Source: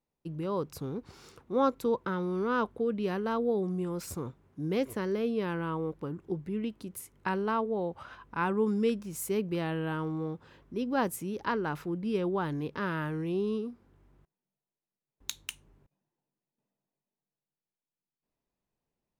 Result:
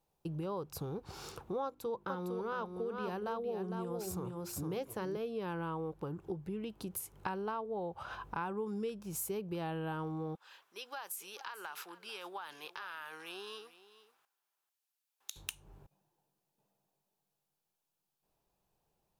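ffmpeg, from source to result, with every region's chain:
-filter_complex "[0:a]asettb=1/sr,asplit=3[s0][s1][s2];[s0]atrim=end=1.644[s3];[s1]atrim=start=1.64:end=5.17,asetpts=PTS-STARTPTS,afade=t=in:d=0.004:c=qsin,afade=t=out:st=3.526:d=0.004:c=qsin,bandreject=f=50:t=h:w=6,bandreject=f=100:t=h:w=6,bandreject=f=150:t=h:w=6,bandreject=f=200:t=h:w=6,bandreject=f=250:t=h:w=6,bandreject=f=300:t=h:w=6,bandreject=f=350:t=h:w=6,bandreject=f=400:t=h:w=6,aecho=1:1:457:0.473,atrim=end_sample=155673[s4];[s2]atrim=start=5.166[s5];[s3][s4]acrossfade=d=0.004:c1=hsin:c2=qsin[s6];[s6][s5]acrossfade=d=0.004:c1=qsin:c2=hsin,asettb=1/sr,asplit=3[s7][s8][s9];[s7]atrim=end=10.354[s10];[s8]atrim=start=10.35:end=15.36,asetpts=PTS-STARTPTS,afade=t=in:d=0.004:c=qsin,afade=t=out:st=5.006:d=0.004:c=qsin,highpass=1500,acompressor=threshold=0.00562:ratio=6:attack=3.2:release=140:knee=1:detection=peak,aecho=1:1:442:0.15,atrim=end_sample=220941[s11];[s9]atrim=start=15.356[s12];[s10][s11]acrossfade=d=0.004:c1=hsin:c2=qsin[s13];[s13][s12]acrossfade=d=0.004:c1=qsin:c2=hsin,equalizer=f=250:t=o:w=0.33:g=-11,equalizer=f=800:t=o:w=0.33:g=6,equalizer=f=2000:t=o:w=0.33:g=-7,equalizer=f=12500:t=o:w=0.33:g=5,acompressor=threshold=0.00562:ratio=4,volume=2.11"

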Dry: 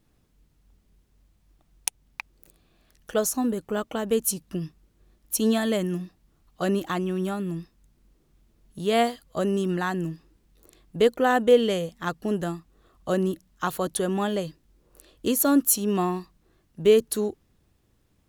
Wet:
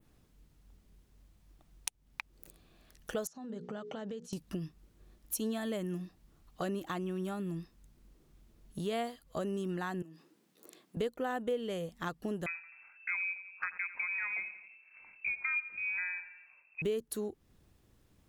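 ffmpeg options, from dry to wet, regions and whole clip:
-filter_complex "[0:a]asettb=1/sr,asplit=3[s0][s1][s2];[s0]atrim=end=3.274[s3];[s1]atrim=start=3.27:end=4.33,asetpts=PTS-STARTPTS,afade=t=in:d=0.004:c=qsin,afade=t=out:st=1.056:d=0.004:c=qsin,bandreject=f=60:t=h:w=6,bandreject=f=120:t=h:w=6,bandreject=f=180:t=h:w=6,bandreject=f=240:t=h:w=6,bandreject=f=300:t=h:w=6,bandreject=f=360:t=h:w=6,bandreject=f=420:t=h:w=6,bandreject=f=480:t=h:w=6,acompressor=threshold=0.0178:ratio=16:attack=3.2:release=140:knee=1:detection=peak,highpass=150,equalizer=f=160:t=q:w=4:g=9,equalizer=f=300:t=q:w=4:g=-8,equalizer=f=1100:t=q:w=4:g=-5,equalizer=f=2500:t=q:w=4:g=-5,lowpass=f=6000:w=0.5412,lowpass=f=6000:w=1.3066[s4];[s2]atrim=start=4.326[s5];[s3][s4]acrossfade=d=0.004:c1=hsin:c2=qsin[s6];[s6][s5]acrossfade=d=0.004:c1=qsin:c2=hsin,asettb=1/sr,asplit=3[s7][s8][s9];[s7]atrim=end=10.024[s10];[s8]atrim=start=10.02:end=10.97,asetpts=PTS-STARTPTS,afade=t=in:d=0.004:c=qsin,afade=t=out:st=0.946:d=0.004:c=qsin,highpass=f=190:w=0.5412,highpass=f=190:w=1.3066,acompressor=threshold=0.00562:ratio=4:attack=3.2:release=140:knee=1:detection=peak[s11];[s9]atrim=start=10.966[s12];[s10][s11]acrossfade=d=0.004:c1=hsin:c2=qsin[s13];[s13][s12]acrossfade=d=0.004:c1=qsin:c2=hsin,asettb=1/sr,asplit=3[s14][s15][s16];[s14]atrim=end=12.464[s17];[s15]atrim=start=12.46:end=16.82,asetpts=PTS-STARTPTS,afade=t=in:d=0.004:c=qsin,afade=t=out:st=4.356:d=0.004:c=qsin,lowpass=f=2300:t=q:w=0.5098,lowpass=f=2300:t=q:w=0.6013,lowpass=f=2300:t=q:w=0.9,lowpass=f=2300:t=q:w=2.563,afreqshift=-2700,aecho=1:1:86|172|258|344:0.158|0.0697|0.0307|0.0135,atrim=end_sample=192276[s18];[s16]atrim=start=16.816[s19];[s17][s18]acrossfade=d=0.004:c1=hsin:c2=qsin[s20];[s20][s19]acrossfade=d=0.004:c1=qsin:c2=hsin,adynamicequalizer=threshold=0.00562:dfrequency=5100:dqfactor=0.95:tfrequency=5100:tqfactor=0.95:attack=5:release=100:ratio=0.375:range=2.5:mode=cutabove:tftype=bell,acompressor=threshold=0.0141:ratio=3"

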